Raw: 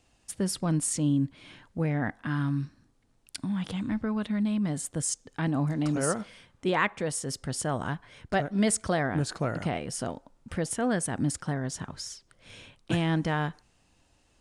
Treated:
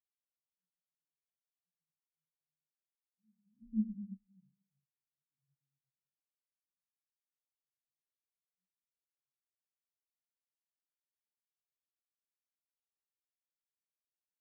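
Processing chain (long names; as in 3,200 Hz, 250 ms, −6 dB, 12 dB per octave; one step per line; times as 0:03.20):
source passing by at 0:03.78, 26 m/s, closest 1.6 metres
guitar amp tone stack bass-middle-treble 10-0-1
rectangular room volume 420 cubic metres, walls mixed, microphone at 1.3 metres
every bin expanded away from the loudest bin 2.5 to 1
level +10.5 dB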